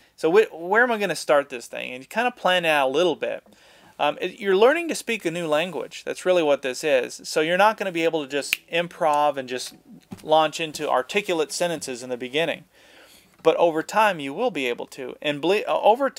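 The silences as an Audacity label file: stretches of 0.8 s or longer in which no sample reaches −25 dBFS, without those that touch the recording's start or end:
12.540000	13.450000	silence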